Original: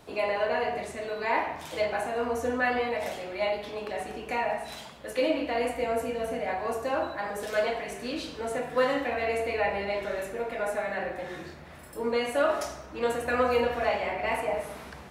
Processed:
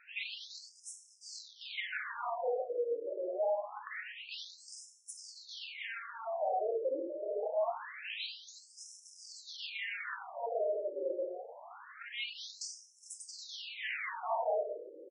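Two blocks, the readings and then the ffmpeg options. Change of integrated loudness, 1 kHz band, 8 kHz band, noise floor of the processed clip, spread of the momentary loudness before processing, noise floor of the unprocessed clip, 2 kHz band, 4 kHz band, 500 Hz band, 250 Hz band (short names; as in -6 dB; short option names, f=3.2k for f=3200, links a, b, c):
-9.0 dB, -10.0 dB, -2.5 dB, -61 dBFS, 9 LU, -46 dBFS, -10.0 dB, -3.5 dB, -9.0 dB, -18.5 dB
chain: -filter_complex "[0:a]highpass=280,acontrast=80,asoftclip=type=hard:threshold=-23.5dB,asplit=2[a][b];[b]aecho=0:1:1155:0.1[c];[a][c]amix=inputs=2:normalize=0,afftfilt=real='re*between(b*sr/1024,420*pow(7400/420,0.5+0.5*sin(2*PI*0.25*pts/sr))/1.41,420*pow(7400/420,0.5+0.5*sin(2*PI*0.25*pts/sr))*1.41)':imag='im*between(b*sr/1024,420*pow(7400/420,0.5+0.5*sin(2*PI*0.25*pts/sr))/1.41,420*pow(7400/420,0.5+0.5*sin(2*PI*0.25*pts/sr))*1.41)':win_size=1024:overlap=0.75,volume=-4.5dB"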